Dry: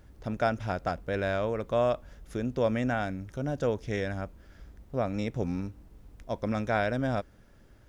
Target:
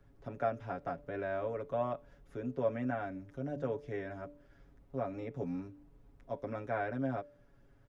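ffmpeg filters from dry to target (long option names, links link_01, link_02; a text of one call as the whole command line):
ffmpeg -i in.wav -filter_complex "[0:a]acrossover=split=2700[link_01][link_02];[link_02]acompressor=threshold=-55dB:ratio=4:attack=1:release=60[link_03];[link_01][link_03]amix=inputs=2:normalize=0,highshelf=frequency=2900:gain=-10.5,aecho=1:1:7.2:0.9,bandreject=frequency=145.8:width_type=h:width=4,bandreject=frequency=291.6:width_type=h:width=4,bandreject=frequency=437.4:width_type=h:width=4,bandreject=frequency=583.2:width_type=h:width=4,acrossover=split=130|370|1200[link_04][link_05][link_06][link_07];[link_04]acompressor=threshold=-48dB:ratio=6[link_08];[link_08][link_05][link_06][link_07]amix=inputs=4:normalize=0,volume=-8.5dB" out.wav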